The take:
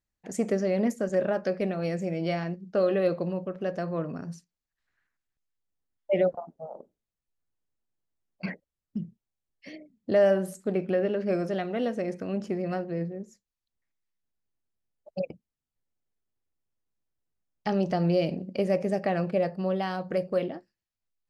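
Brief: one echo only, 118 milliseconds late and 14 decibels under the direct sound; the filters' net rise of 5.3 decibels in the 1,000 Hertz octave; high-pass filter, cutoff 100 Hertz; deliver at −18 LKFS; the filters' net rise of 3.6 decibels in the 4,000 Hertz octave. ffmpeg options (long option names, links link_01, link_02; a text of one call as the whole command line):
ffmpeg -i in.wav -af "highpass=100,equalizer=frequency=1000:width_type=o:gain=8,equalizer=frequency=4000:width_type=o:gain=4.5,aecho=1:1:118:0.2,volume=8.5dB" out.wav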